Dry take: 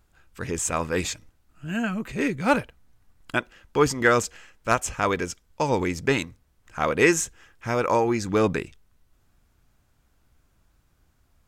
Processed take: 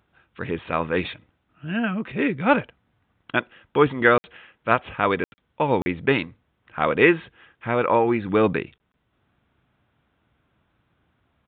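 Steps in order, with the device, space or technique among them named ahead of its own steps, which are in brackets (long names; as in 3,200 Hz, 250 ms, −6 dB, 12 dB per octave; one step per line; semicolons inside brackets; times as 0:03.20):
call with lost packets (high-pass filter 110 Hz 12 dB per octave; downsampling to 8,000 Hz; dropped packets bursts)
level +2.5 dB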